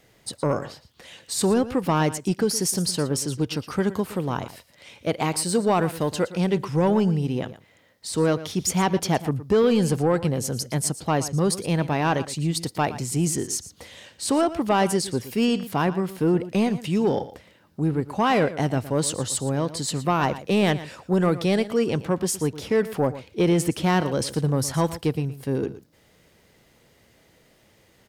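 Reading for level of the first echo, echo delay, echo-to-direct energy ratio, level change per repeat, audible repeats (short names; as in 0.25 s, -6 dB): -15.0 dB, 0.116 s, -15.0 dB, no steady repeat, 1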